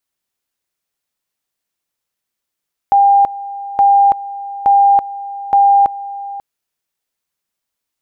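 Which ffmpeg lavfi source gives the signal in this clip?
-f lavfi -i "aevalsrc='pow(10,(-6-17*gte(mod(t,0.87),0.33))/20)*sin(2*PI*800*t)':d=3.48:s=44100"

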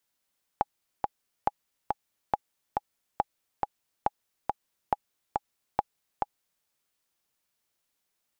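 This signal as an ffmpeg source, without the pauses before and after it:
-f lavfi -i "aevalsrc='pow(10,(-10-3*gte(mod(t,2*60/139),60/139))/20)*sin(2*PI*827*mod(t,60/139))*exp(-6.91*mod(t,60/139)/0.03)':d=6.04:s=44100"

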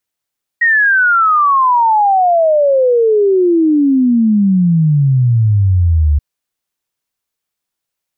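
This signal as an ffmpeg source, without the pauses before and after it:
-f lavfi -i "aevalsrc='0.422*clip(min(t,5.58-t)/0.01,0,1)*sin(2*PI*1900*5.58/log(71/1900)*(exp(log(71/1900)*t/5.58)-1))':d=5.58:s=44100"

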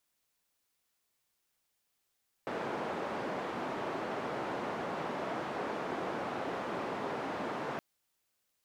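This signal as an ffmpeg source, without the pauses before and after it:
-f lavfi -i "anoisesrc=c=white:d=5.32:r=44100:seed=1,highpass=f=200,lowpass=f=880,volume=-17.6dB"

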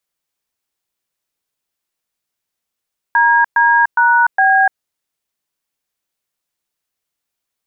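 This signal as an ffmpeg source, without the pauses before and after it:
-f lavfi -i "aevalsrc='0.282*clip(min(mod(t,0.411),0.295-mod(t,0.411))/0.002,0,1)*(eq(floor(t/0.411),0)*(sin(2*PI*941*mod(t,0.411))+sin(2*PI*1633*mod(t,0.411)))+eq(floor(t/0.411),1)*(sin(2*PI*941*mod(t,0.411))+sin(2*PI*1633*mod(t,0.411)))+eq(floor(t/0.411),2)*(sin(2*PI*941*mod(t,0.411))+sin(2*PI*1477*mod(t,0.411)))+eq(floor(t/0.411),3)*(sin(2*PI*770*mod(t,0.411))+sin(2*PI*1633*mod(t,0.411))))':d=1.644:s=44100"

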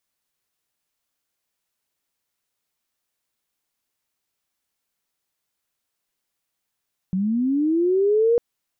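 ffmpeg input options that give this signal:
-f lavfi -i "aevalsrc='pow(10,(-19.5+5.5*t/1.25)/20)*sin(2*PI*(180*t+300*t*t/(2*1.25)))':d=1.25:s=44100"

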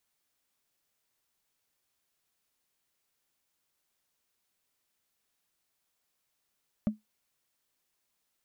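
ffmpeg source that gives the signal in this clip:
-f lavfi -i "aevalsrc='0.1*pow(10,-3*t/0.16)*sin(2*PI*214*t)+0.0282*pow(10,-3*t/0.047)*sin(2*PI*590*t)+0.00794*pow(10,-3*t/0.021)*sin(2*PI*1156.5*t)+0.00224*pow(10,-3*t/0.012)*sin(2*PI*1911.7*t)+0.000631*pow(10,-3*t/0.007)*sin(2*PI*2854.8*t)':d=0.45:s=44100"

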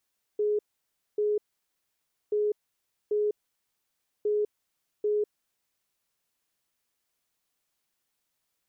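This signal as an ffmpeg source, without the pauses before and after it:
-f lavfi -i "aevalsrc='0.0708*sin(2*PI*419*t)*clip(min(mod(mod(t,1.93),0.79),0.2-mod(mod(t,1.93),0.79))/0.005,0,1)*lt(mod(t,1.93),1.58)':d=5.79:s=44100"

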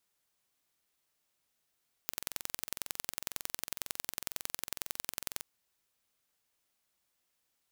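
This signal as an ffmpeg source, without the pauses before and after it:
-f lavfi -i "aevalsrc='0.473*eq(mod(n,2005),0)*(0.5+0.5*eq(mod(n,4010),0))':d=3.36:s=44100"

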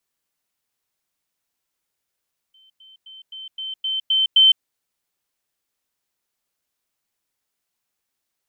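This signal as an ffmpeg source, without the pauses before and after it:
-f lavfi -i "aevalsrc='pow(10,(-51+6*floor(t/0.26))/20)*sin(2*PI*3090*t)*clip(min(mod(t,0.26),0.16-mod(t,0.26))/0.005,0,1)':d=2.08:s=44100"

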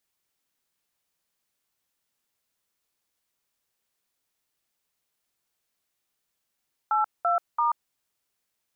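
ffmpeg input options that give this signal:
-f lavfi -i "aevalsrc='0.0708*clip(min(mod(t,0.337),0.134-mod(t,0.337))/0.002,0,1)*(eq(floor(t/0.337),0)*(sin(2*PI*852*mod(t,0.337))+sin(2*PI*1336*mod(t,0.337)))+eq(floor(t/0.337),1)*(sin(2*PI*697*mod(t,0.337))+sin(2*PI*1336*mod(t,0.337)))+eq(floor(t/0.337),2)*(sin(2*PI*941*mod(t,0.337))+sin(2*PI*1209*mod(t,0.337))))':d=1.011:s=44100"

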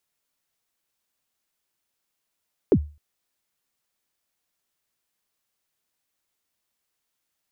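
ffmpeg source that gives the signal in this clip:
-f lavfi -i "aevalsrc='0.335*pow(10,-3*t/0.33)*sin(2*PI*(480*0.065/log(74/480)*(exp(log(74/480)*min(t,0.065)/0.065)-1)+74*max(t-0.065,0)))':d=0.26:s=44100"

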